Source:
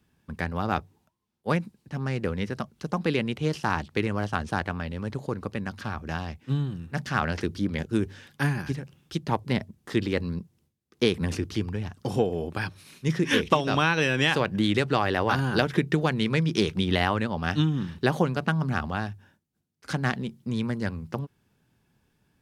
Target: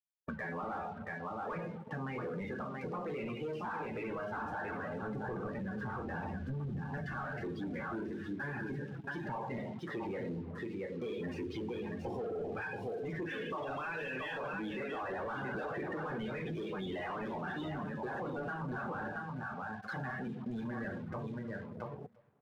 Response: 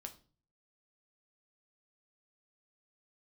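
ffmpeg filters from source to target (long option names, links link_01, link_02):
-filter_complex "[0:a]asettb=1/sr,asplit=3[link_01][link_02][link_03];[link_01]atrim=end=5.024[link_04];[link_02]atrim=start=5.02:end=7.12,asetpts=PTS-STARTPTS,afade=type=in:duration=0.004:curve=qsin,afade=type=out:start_time=2.096:duration=0.004:curve=qsin,lowshelf=frequency=250:gain=8.5[link_05];[link_03]atrim=start=7.116[link_06];[link_04][link_05]acrossfade=duration=0.004:curve1=hsin:curve2=qsin[link_07];[link_07][link_06]acrossfade=duration=0.004:curve1=qsin:curve2=hsin,aecho=1:1:678:0.355[link_08];[1:a]atrim=start_sample=2205,asetrate=29988,aresample=44100[link_09];[link_08][link_09]afir=irnorm=-1:irlink=0,acrusher=bits=7:mix=0:aa=0.5,asplit=2[link_10][link_11];[link_11]highpass=frequency=720:poles=1,volume=36dB,asoftclip=type=tanh:threshold=-8dB[link_12];[link_10][link_12]amix=inputs=2:normalize=0,lowpass=frequency=2700:poles=1,volume=-6dB,acompressor=threshold=-38dB:ratio=6,asplit=2[link_13][link_14];[link_14]adelay=344,lowpass=frequency=2100:poles=1,volume=-13dB,asplit=2[link_15][link_16];[link_16]adelay=344,lowpass=frequency=2100:poles=1,volume=0.54,asplit=2[link_17][link_18];[link_18]adelay=344,lowpass=frequency=2100:poles=1,volume=0.54,asplit=2[link_19][link_20];[link_20]adelay=344,lowpass=frequency=2100:poles=1,volume=0.54,asplit=2[link_21][link_22];[link_22]adelay=344,lowpass=frequency=2100:poles=1,volume=0.54,asplit=2[link_23][link_24];[link_24]adelay=344,lowpass=frequency=2100:poles=1,volume=0.54[link_25];[link_13][link_15][link_17][link_19][link_21][link_23][link_25]amix=inputs=7:normalize=0,afftdn=noise_reduction=18:noise_floor=-36,volume=-1.5dB"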